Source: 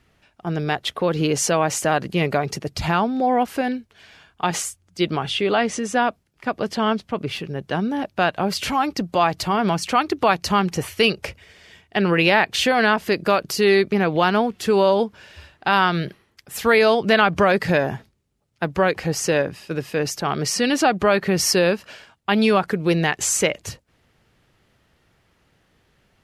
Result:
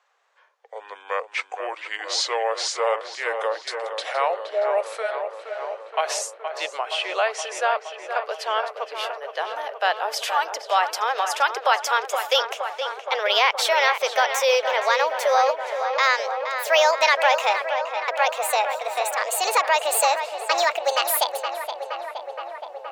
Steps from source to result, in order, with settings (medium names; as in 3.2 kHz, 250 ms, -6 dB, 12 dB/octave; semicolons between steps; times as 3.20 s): gliding tape speed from 60% -> 169%; steep high-pass 490 Hz 48 dB/octave; filtered feedback delay 470 ms, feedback 79%, low-pass 3.1 kHz, level -8 dB; trim -1.5 dB